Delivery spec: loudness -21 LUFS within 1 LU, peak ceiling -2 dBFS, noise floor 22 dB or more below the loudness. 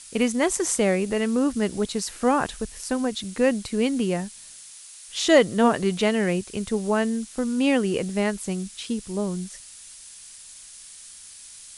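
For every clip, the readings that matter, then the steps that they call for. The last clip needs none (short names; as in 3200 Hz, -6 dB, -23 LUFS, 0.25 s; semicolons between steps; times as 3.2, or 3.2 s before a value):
noise floor -45 dBFS; noise floor target -46 dBFS; loudness -24.0 LUFS; peak -3.5 dBFS; loudness target -21.0 LUFS
-> denoiser 6 dB, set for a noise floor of -45 dBFS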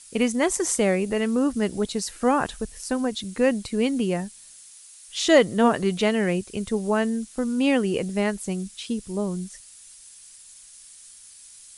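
noise floor -48 dBFS; loudness -24.0 LUFS; peak -4.0 dBFS; loudness target -21.0 LUFS
-> gain +3 dB; limiter -2 dBFS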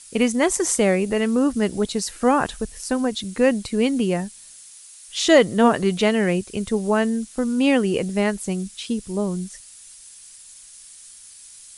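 loudness -21.0 LUFS; peak -2.0 dBFS; noise floor -45 dBFS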